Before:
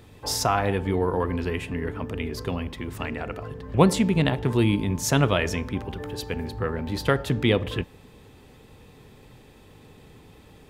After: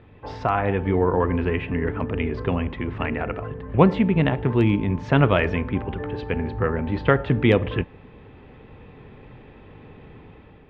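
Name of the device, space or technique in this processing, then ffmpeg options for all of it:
action camera in a waterproof case: -af "lowpass=frequency=2700:width=0.5412,lowpass=frequency=2700:width=1.3066,dynaudnorm=framelen=540:gausssize=3:maxgain=5.5dB" -ar 48000 -c:a aac -b:a 128k

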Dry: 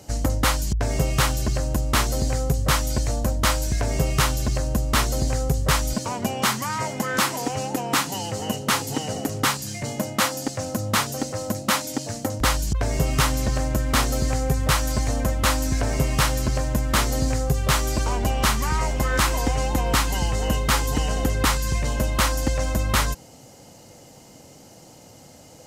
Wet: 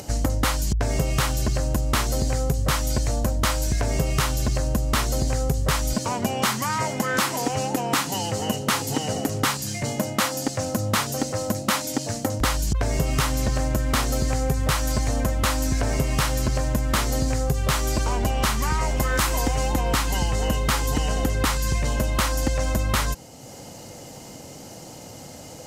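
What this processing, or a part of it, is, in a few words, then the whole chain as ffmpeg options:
upward and downward compression: -filter_complex "[0:a]acompressor=mode=upward:threshold=-36dB:ratio=2.5,acompressor=threshold=-21dB:ratio=6,asettb=1/sr,asplit=3[link_01][link_02][link_03];[link_01]atrim=end=18.974[link_04];[link_02]atrim=start=18.97:end=19.72,asetpts=PTS-STARTPTS,afade=type=in:duration=0.004:curve=qsin,afade=type=out:start_time=0.746:duration=0.004:curve=qsin,highshelf=frequency=8800:gain=5.5[link_05];[link_03]atrim=start=19.716[link_06];[link_04][link_05]acrossfade=duration=0.004:curve1=hsin:curve2=qsin[link_07];[link_07][link_06]acrossfade=duration=0.004:curve1=qsin:curve2=hsin,volume=2.5dB"

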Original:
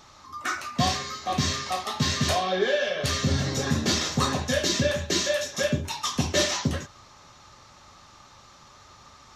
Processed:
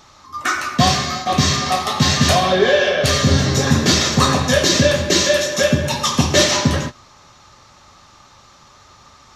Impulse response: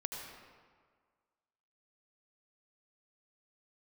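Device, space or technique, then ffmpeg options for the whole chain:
keyed gated reverb: -filter_complex "[0:a]asplit=3[link_01][link_02][link_03];[1:a]atrim=start_sample=2205[link_04];[link_02][link_04]afir=irnorm=-1:irlink=0[link_05];[link_03]apad=whole_len=412656[link_06];[link_05][link_06]sidechaingate=range=-33dB:threshold=-39dB:ratio=16:detection=peak,volume=1dB[link_07];[link_01][link_07]amix=inputs=2:normalize=0,volume=4dB"

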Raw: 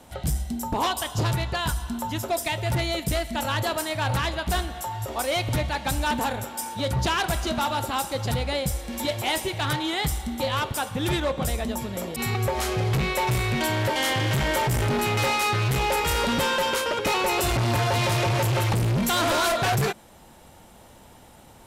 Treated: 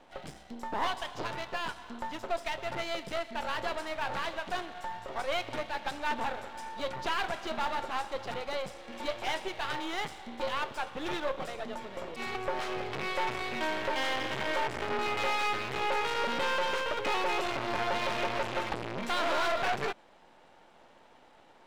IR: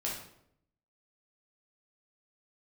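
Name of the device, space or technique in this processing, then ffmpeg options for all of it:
crystal radio: -af "highpass=350,lowpass=3300,aeval=exprs='if(lt(val(0),0),0.251*val(0),val(0))':channel_layout=same,volume=-2dB"

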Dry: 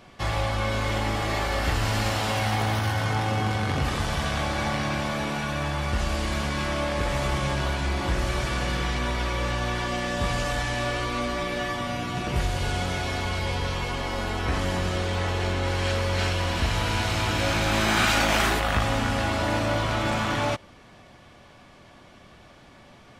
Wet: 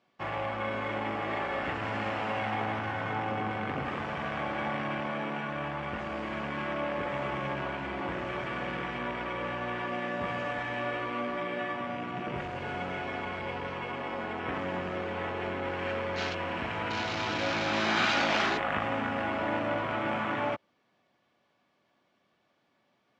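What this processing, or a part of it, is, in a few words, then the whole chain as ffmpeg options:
over-cleaned archive recording: -af "highpass=190,lowpass=5700,afwtdn=0.0224,volume=-4dB"

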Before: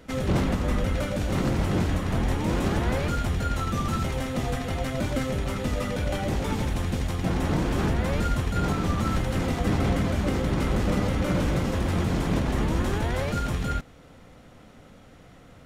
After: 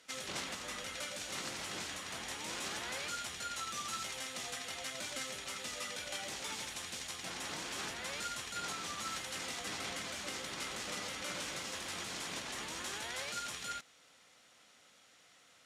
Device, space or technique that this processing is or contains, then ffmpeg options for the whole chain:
piezo pickup straight into a mixer: -af "lowpass=7200,aderivative,volume=4.5dB"

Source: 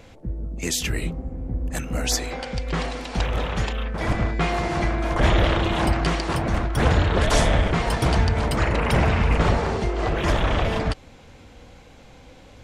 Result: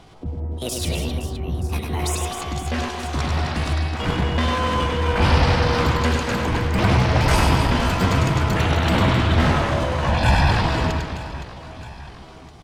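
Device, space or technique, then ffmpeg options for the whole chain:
chipmunk voice: -filter_complex "[0:a]asetrate=64194,aresample=44100,atempo=0.686977,highshelf=frequency=10000:gain=-12,asettb=1/sr,asplit=3[link_01][link_02][link_03];[link_01]atrim=end=10.064[link_04];[link_02]atrim=start=10.06:end=10.51,asetpts=PTS-STARTPTS,afade=type=in:duration=0.004:curve=qsin,afade=type=out:start_time=0.446:duration=0.004:curve=qsin,aecho=1:1:1.2:0.8,atrim=end_sample=19845[link_05];[link_03]atrim=start=10.506[link_06];[link_04][link_05]acrossfade=duration=0.004:curve1=hsin:curve2=qsin[link_07];[link_07][link_06]acrossfade=duration=0.004:curve1=qsin:curve2=hsin,aecho=1:1:100|260|516|925.6|1581:0.631|0.398|0.251|0.158|0.1"

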